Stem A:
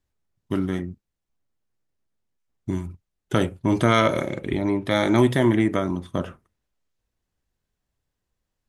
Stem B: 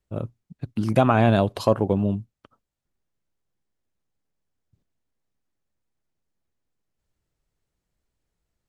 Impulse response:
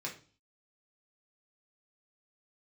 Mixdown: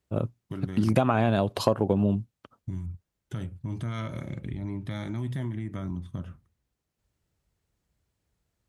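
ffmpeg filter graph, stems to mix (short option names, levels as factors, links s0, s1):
-filter_complex "[0:a]asubboost=boost=9:cutoff=150,acompressor=threshold=0.0891:ratio=2,alimiter=limit=0.178:level=0:latency=1:release=170,volume=0.355[s0];[1:a]volume=1.26[s1];[s0][s1]amix=inputs=2:normalize=0,highpass=64,acompressor=threshold=0.126:ratio=6"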